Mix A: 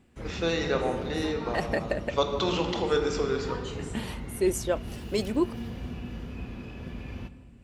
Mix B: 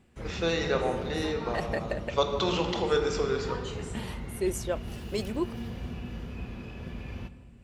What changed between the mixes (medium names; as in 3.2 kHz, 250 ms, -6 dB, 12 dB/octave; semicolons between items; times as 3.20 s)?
second voice -3.5 dB; master: add peaking EQ 280 Hz -5.5 dB 0.29 oct